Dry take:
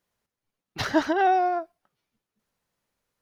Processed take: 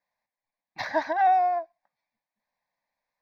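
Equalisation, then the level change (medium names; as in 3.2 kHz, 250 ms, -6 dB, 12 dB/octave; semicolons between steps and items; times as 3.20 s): tone controls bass -14 dB, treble -13 dB; peaking EQ 75 Hz -5 dB 2.3 oct; static phaser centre 2 kHz, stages 8; +2.0 dB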